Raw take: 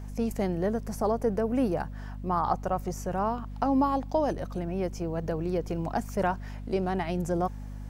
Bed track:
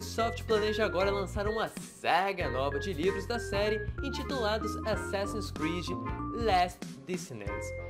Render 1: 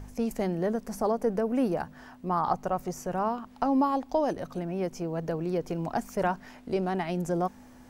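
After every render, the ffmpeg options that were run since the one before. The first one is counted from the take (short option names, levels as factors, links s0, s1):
-af "bandreject=f=50:t=h:w=4,bandreject=f=100:t=h:w=4,bandreject=f=150:t=h:w=4,bandreject=f=200:t=h:w=4"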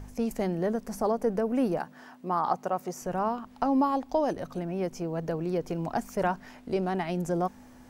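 -filter_complex "[0:a]asettb=1/sr,asplit=3[s0][s1][s2];[s0]atrim=end=1.794[s3];[s1]atrim=start=1.79:end=3.02,asetpts=PTS-STARTPTS,afade=t=in:d=0.004:c=qsin,afade=t=out:st=1.226:d=0.004:c=qsin,highpass=200[s4];[s2]atrim=start=3.016[s5];[s3][s4]acrossfade=d=0.004:c1=hsin:c2=qsin[s6];[s6][s5]acrossfade=d=0.004:c1=qsin:c2=hsin"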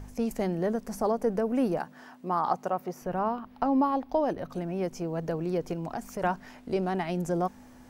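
-filter_complex "[0:a]asettb=1/sr,asplit=3[s0][s1][s2];[s0]atrim=end=2.724[s3];[s1]atrim=start=2.72:end=4.5,asetpts=PTS-STARTPTS,afade=t=in:d=0.004:c=qsin,afade=t=out:st=1.776:d=0.004:c=qsin,equalizer=f=7500:w=1.1:g=-12.5[s4];[s2]atrim=start=4.496[s5];[s3][s4]acrossfade=d=0.004:c1=hsin:c2=qsin[s6];[s6][s5]acrossfade=d=0.004:c1=qsin:c2=hsin,asettb=1/sr,asplit=3[s7][s8][s9];[s7]atrim=end=5.734[s10];[s8]atrim=start=5.73:end=6.23,asetpts=PTS-STARTPTS,afade=t=in:d=0.004:c=qsin,afade=t=out:st=0.496:d=0.004:c=qsin,acompressor=threshold=0.0282:ratio=3:attack=3.2:release=140:knee=1:detection=peak[s11];[s9]atrim=start=6.226[s12];[s10][s11]acrossfade=d=0.004:c1=hsin:c2=qsin[s13];[s13][s12]acrossfade=d=0.004:c1=qsin:c2=hsin"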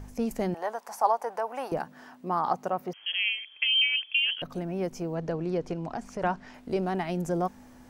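-filter_complex "[0:a]asettb=1/sr,asplit=3[s0][s1][s2];[s0]atrim=end=0.544[s3];[s1]atrim=start=0.54:end=1.72,asetpts=PTS-STARTPTS,afade=t=in:d=0.004:c=qsin,afade=t=out:st=1.176:d=0.004:c=qsin,highpass=f=870:t=q:w=3.6[s4];[s2]atrim=start=1.716[s5];[s3][s4]acrossfade=d=0.004:c1=hsin:c2=qsin[s6];[s6][s5]acrossfade=d=0.004:c1=qsin:c2=hsin,asettb=1/sr,asplit=3[s7][s8][s9];[s7]atrim=end=2.934[s10];[s8]atrim=start=2.93:end=4.42,asetpts=PTS-STARTPTS,afade=t=in:d=0.004:c=qsin,afade=t=out:st=1.486:d=0.004:c=qsin,lowpass=f=2900:t=q:w=0.5098,lowpass=f=2900:t=q:w=0.6013,lowpass=f=2900:t=q:w=0.9,lowpass=f=2900:t=q:w=2.563,afreqshift=-3400[s11];[s9]atrim=start=4.416[s12];[s10][s11]acrossfade=d=0.004:c1=hsin:c2=qsin[s13];[s13][s12]acrossfade=d=0.004:c1=qsin:c2=hsin,asettb=1/sr,asplit=3[s14][s15][s16];[s14]atrim=end=5.154[s17];[s15]atrim=start=5.15:end=6.54,asetpts=PTS-STARTPTS,afade=t=in:d=0.004:c=qsin,afade=t=out:st=1.386:d=0.004:c=qsin,lowpass=6600[s18];[s16]atrim=start=6.536[s19];[s17][s18]acrossfade=d=0.004:c1=hsin:c2=qsin[s20];[s20][s19]acrossfade=d=0.004:c1=qsin:c2=hsin"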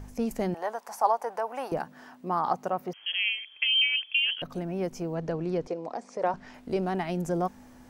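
-filter_complex "[0:a]asettb=1/sr,asplit=3[s0][s1][s2];[s0]atrim=end=5.674[s3];[s1]atrim=start=5.67:end=6.34,asetpts=PTS-STARTPTS,afade=t=in:d=0.004:c=qsin,afade=t=out:st=0.666:d=0.004:c=qsin,highpass=320,equalizer=f=500:t=q:w=4:g=8,equalizer=f=1500:t=q:w=4:g=-7,equalizer=f=2900:t=q:w=4:g=-8,equalizer=f=6900:t=q:w=4:g=-3,lowpass=f=8700:w=0.5412,lowpass=f=8700:w=1.3066[s4];[s2]atrim=start=6.336[s5];[s3][s4]acrossfade=d=0.004:c1=hsin:c2=qsin[s6];[s6][s5]acrossfade=d=0.004:c1=qsin:c2=hsin"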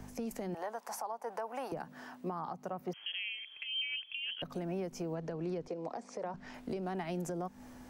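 -filter_complex "[0:a]acrossover=split=120|240[s0][s1][s2];[s0]acompressor=threshold=0.00158:ratio=4[s3];[s1]acompressor=threshold=0.00891:ratio=4[s4];[s2]acompressor=threshold=0.02:ratio=4[s5];[s3][s4][s5]amix=inputs=3:normalize=0,alimiter=level_in=1.78:limit=0.0631:level=0:latency=1:release=220,volume=0.562"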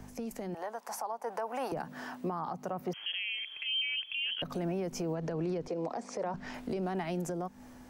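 -af "dynaudnorm=f=380:g=7:m=2.24,alimiter=level_in=1.33:limit=0.0631:level=0:latency=1:release=36,volume=0.75"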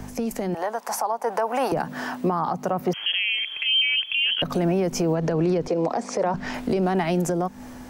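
-af "volume=3.98"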